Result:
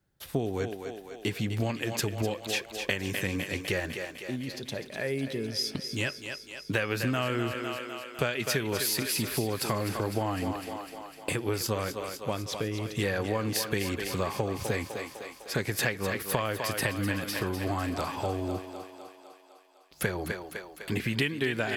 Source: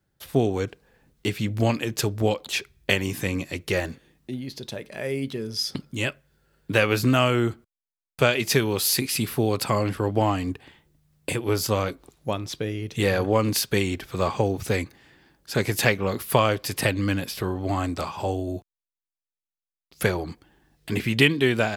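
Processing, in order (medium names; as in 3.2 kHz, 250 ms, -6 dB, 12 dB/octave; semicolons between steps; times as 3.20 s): thinning echo 252 ms, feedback 66%, high-pass 310 Hz, level -9 dB; dynamic bell 1.7 kHz, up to +5 dB, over -42 dBFS, Q 3.7; compression 4:1, threshold -24 dBFS, peak gain reduction 11 dB; trim -2 dB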